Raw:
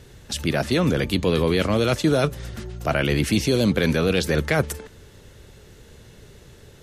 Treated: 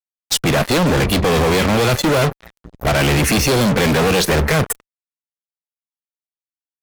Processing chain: spectral noise reduction 26 dB; transient shaper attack +2 dB, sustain -2 dB; fuzz box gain 36 dB, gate -38 dBFS

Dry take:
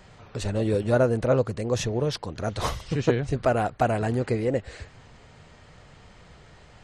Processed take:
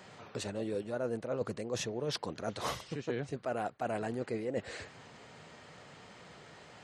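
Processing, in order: high-pass 180 Hz 12 dB/octave; reverse; compression 6:1, threshold -33 dBFS, peak gain reduction 16 dB; reverse

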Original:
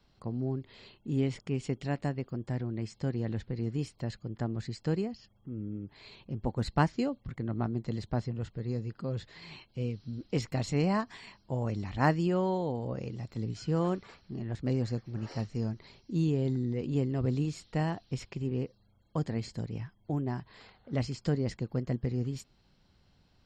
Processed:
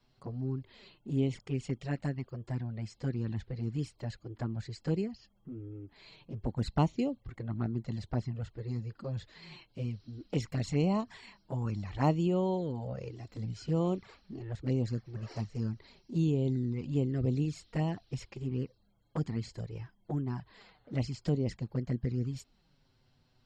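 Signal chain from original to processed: touch-sensitive flanger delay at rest 8.3 ms, full sweep at -25 dBFS

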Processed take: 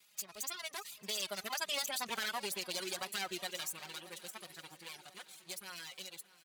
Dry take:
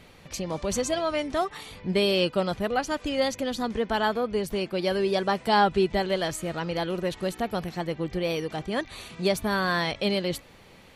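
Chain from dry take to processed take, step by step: comb filter that takes the minimum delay 5.2 ms; Doppler pass-by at 3.75 s, 23 m/s, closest 24 m; reverb removal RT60 0.59 s; high-pass 58 Hz 24 dB/octave; pre-emphasis filter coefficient 0.97; band-stop 5.4 kHz, Q 25; peak limiter -35 dBFS, peak gain reduction 9.5 dB; tempo 1.7×; shuffle delay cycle 1044 ms, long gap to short 1.5:1, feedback 44%, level -19 dB; trim +9.5 dB

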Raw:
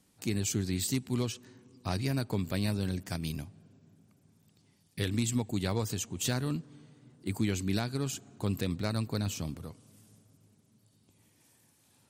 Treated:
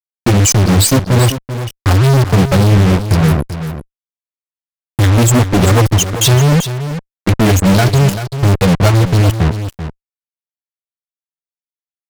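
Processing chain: expander on every frequency bin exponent 3; tilt EQ -2 dB/octave; fuzz box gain 58 dB, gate -47 dBFS; delay 388 ms -10.5 dB; trim +5.5 dB

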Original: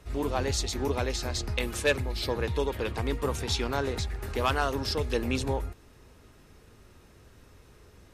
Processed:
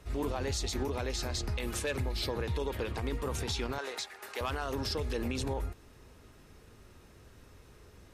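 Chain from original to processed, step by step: 3.78–4.41 s: high-pass 670 Hz 12 dB/octave; peak limiter -23.5 dBFS, peak gain reduction 10 dB; trim -1 dB

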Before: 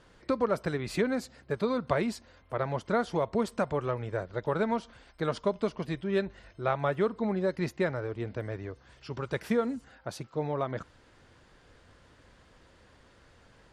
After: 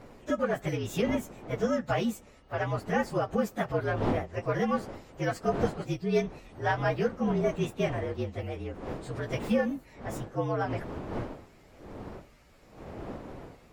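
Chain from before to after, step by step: frequency axis rescaled in octaves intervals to 115%; wind noise 510 Hz -44 dBFS; trim +3 dB

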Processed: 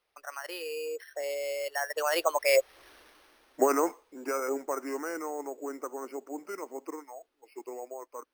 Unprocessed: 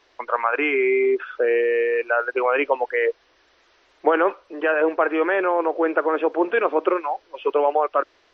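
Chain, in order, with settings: Doppler pass-by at 2.87 s, 57 m/s, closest 12 m; careless resampling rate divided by 6×, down none, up hold; trim +4.5 dB

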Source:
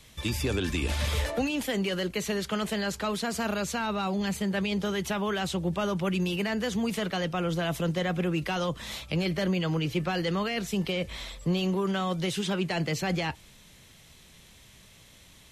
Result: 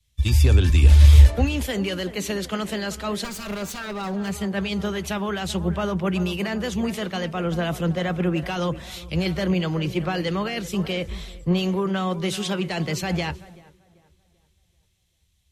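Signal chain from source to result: 3.24–4.30 s: comb filter that takes the minimum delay 5.1 ms; peaking EQ 71 Hz +9 dB 0.95 oct; tape echo 386 ms, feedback 66%, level -11.5 dB, low-pass 1.8 kHz; three bands expanded up and down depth 100%; trim +3 dB

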